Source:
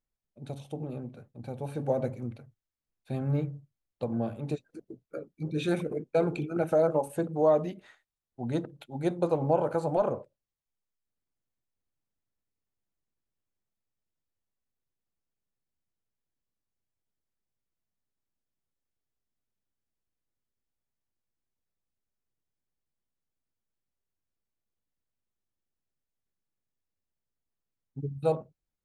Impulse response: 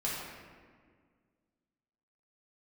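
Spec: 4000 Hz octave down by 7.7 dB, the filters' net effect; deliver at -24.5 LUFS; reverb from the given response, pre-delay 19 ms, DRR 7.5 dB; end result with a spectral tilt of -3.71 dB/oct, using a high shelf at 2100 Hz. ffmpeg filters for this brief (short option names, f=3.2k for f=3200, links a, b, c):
-filter_complex "[0:a]highshelf=f=2.1k:g=-5,equalizer=f=4k:t=o:g=-4.5,asplit=2[a][b];[1:a]atrim=start_sample=2205,adelay=19[c];[b][c]afir=irnorm=-1:irlink=0,volume=-13dB[d];[a][d]amix=inputs=2:normalize=0,volume=6dB"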